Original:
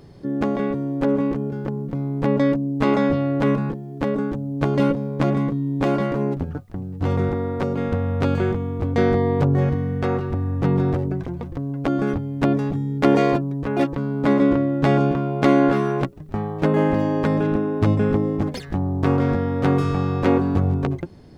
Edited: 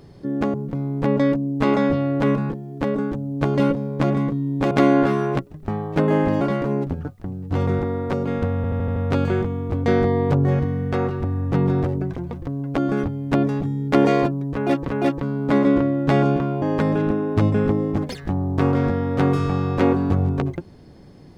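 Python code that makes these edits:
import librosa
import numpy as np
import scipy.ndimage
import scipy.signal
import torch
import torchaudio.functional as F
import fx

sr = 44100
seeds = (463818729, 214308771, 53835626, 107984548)

y = fx.edit(x, sr, fx.cut(start_s=0.54, length_s=1.2),
    fx.stutter(start_s=8.06, slice_s=0.08, count=6),
    fx.repeat(start_s=13.63, length_s=0.35, count=2),
    fx.move(start_s=15.37, length_s=1.7, to_s=5.91), tone=tone)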